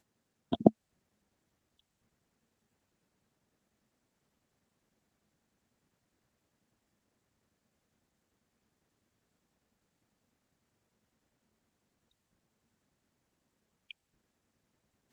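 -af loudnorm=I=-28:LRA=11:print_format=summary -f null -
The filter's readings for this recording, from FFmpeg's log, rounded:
Input Integrated:    -29.4 LUFS
Input True Peak:      -4.7 dBTP
Input LRA:            26.0 LU
Input Threshold:     -43.9 LUFS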